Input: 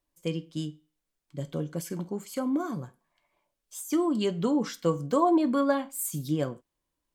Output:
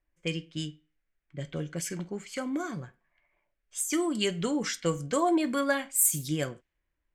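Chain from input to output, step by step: ten-band EQ 125 Hz -7 dB, 250 Hz -10 dB, 500 Hz -6 dB, 1000 Hz -12 dB, 2000 Hz +6 dB, 4000 Hz -5 dB, 8000 Hz +4 dB; low-pass opened by the level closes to 1600 Hz, open at -32 dBFS; gain +7.5 dB

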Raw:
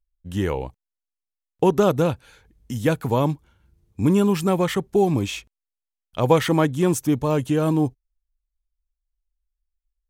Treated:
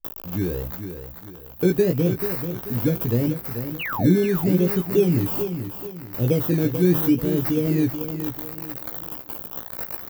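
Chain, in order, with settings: switching spikes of -14 dBFS; inverse Chebyshev band-stop 1300–7100 Hz, stop band 60 dB; in parallel at -8 dB: decimation with a swept rate 18×, swing 60% 0.78 Hz; on the sum: painted sound fall, 3.79–4.17, 230–3100 Hz -27 dBFS; doubler 17 ms -5 dB; feedback echo 0.436 s, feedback 36%, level -9 dB; gain -3 dB

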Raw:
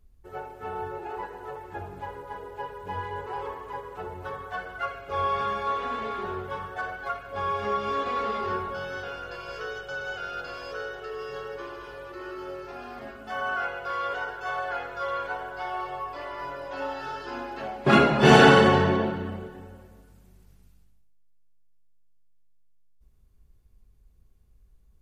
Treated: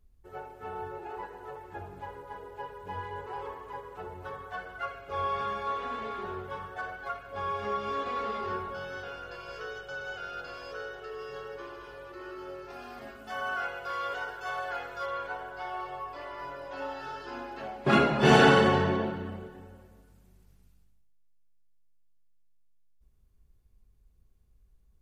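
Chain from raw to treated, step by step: 12.7–15.06 high shelf 3900 Hz +7.5 dB; gain -4.5 dB

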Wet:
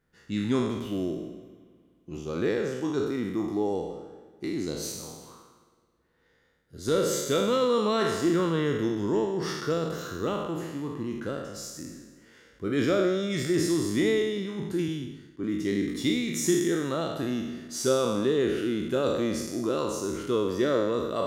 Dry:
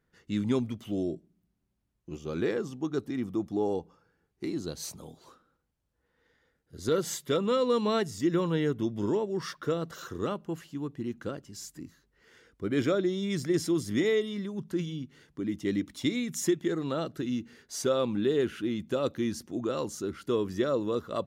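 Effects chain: spectral trails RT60 1.18 s; spring tank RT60 2.8 s, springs 54 ms, chirp 70 ms, DRR 18.5 dB; 14.88–15.44 three-band expander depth 70%

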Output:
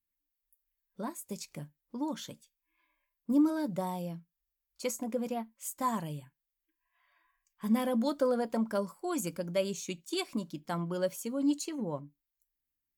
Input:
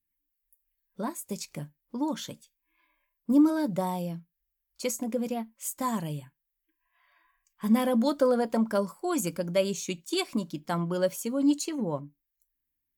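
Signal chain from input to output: 4.02–6.05 dynamic EQ 1000 Hz, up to +5 dB, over -42 dBFS, Q 0.8; gain -5 dB

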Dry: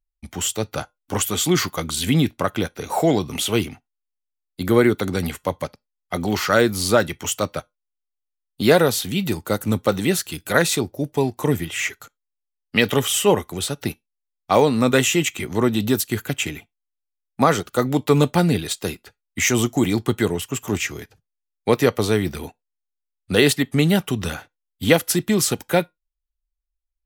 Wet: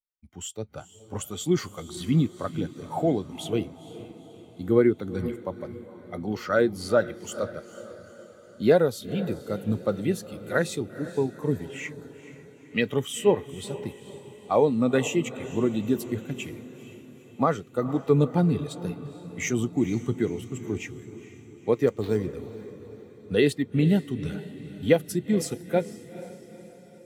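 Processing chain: 21.87–22.33 sample-rate reducer 7900 Hz, jitter 0%; diffused feedback echo 0.466 s, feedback 65%, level -9.5 dB; spectral expander 1.5:1; gain -5 dB

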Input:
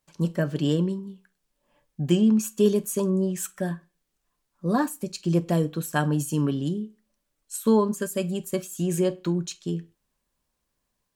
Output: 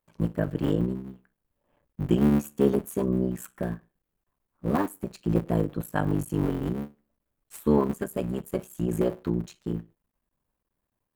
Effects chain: cycle switcher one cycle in 3, muted; bell 5600 Hz -13.5 dB 2.1 oct

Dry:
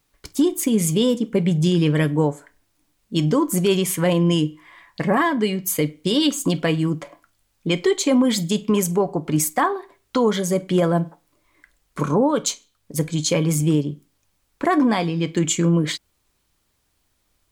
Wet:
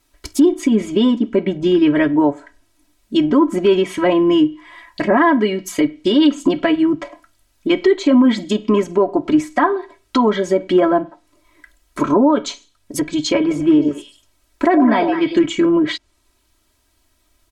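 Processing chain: 13.4–15.46 delay with a stepping band-pass 0.103 s, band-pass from 560 Hz, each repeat 1.4 oct, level -2 dB; treble ducked by the level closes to 2300 Hz, closed at -16.5 dBFS; comb 3.1 ms, depth 99%; maximiser +7.5 dB; gain -4 dB

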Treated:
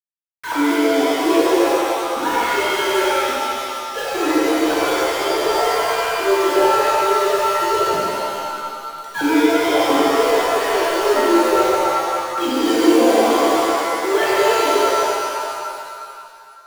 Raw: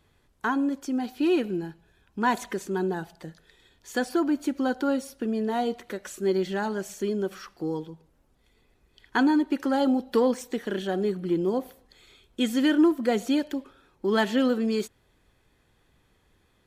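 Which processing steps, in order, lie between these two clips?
sine-wave speech; power-law curve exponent 0.5; bit-crush 5-bit; shimmer reverb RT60 2.2 s, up +7 st, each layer -2 dB, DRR -7.5 dB; gain -9.5 dB

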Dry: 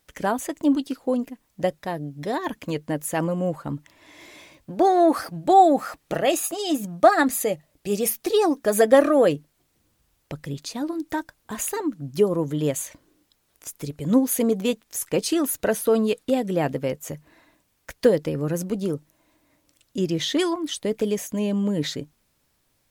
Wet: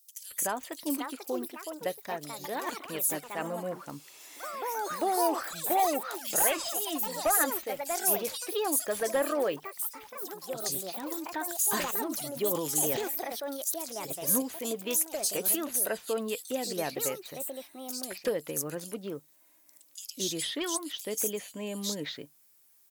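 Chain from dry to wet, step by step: RIAA curve recording; compressor 1.5:1, threshold -22 dBFS, peak gain reduction 6 dB; hard clip -15 dBFS, distortion -14 dB; echoes that change speed 0.594 s, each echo +4 st, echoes 3, each echo -6 dB; bands offset in time highs, lows 0.22 s, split 3700 Hz; 11.02–13.74 sustainer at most 38 dB/s; gain -6.5 dB

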